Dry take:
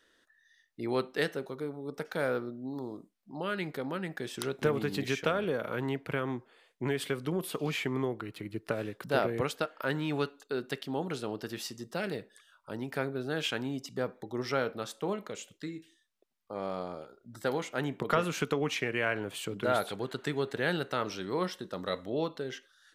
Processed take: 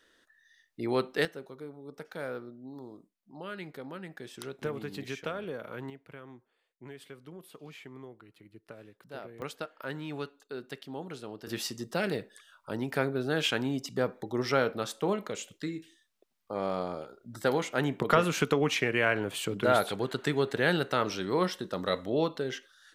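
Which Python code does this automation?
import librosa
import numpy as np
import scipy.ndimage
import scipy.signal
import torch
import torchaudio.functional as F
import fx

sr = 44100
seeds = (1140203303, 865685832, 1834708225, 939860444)

y = fx.gain(x, sr, db=fx.steps((0.0, 2.0), (1.25, -6.5), (5.9, -15.0), (9.42, -6.0), (11.47, 4.0)))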